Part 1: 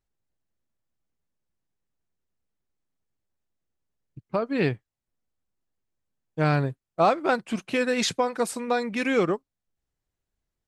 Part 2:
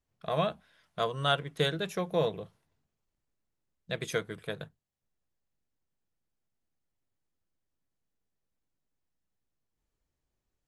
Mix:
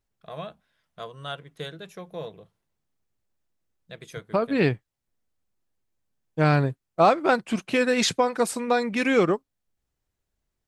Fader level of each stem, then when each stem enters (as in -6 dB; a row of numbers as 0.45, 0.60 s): +2.5, -7.5 dB; 0.00, 0.00 s